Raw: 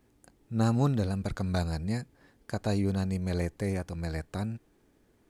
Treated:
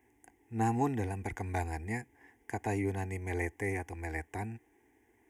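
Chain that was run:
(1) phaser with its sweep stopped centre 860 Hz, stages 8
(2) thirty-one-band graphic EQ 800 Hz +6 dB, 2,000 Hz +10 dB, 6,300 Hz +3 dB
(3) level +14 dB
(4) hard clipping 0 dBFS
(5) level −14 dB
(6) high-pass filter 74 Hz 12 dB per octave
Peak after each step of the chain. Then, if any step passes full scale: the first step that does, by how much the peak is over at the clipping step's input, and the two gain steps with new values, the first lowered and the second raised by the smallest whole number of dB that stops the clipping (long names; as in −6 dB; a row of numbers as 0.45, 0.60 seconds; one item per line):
−21.0, −19.0, −5.0, −5.0, −19.0, −18.5 dBFS
no step passes full scale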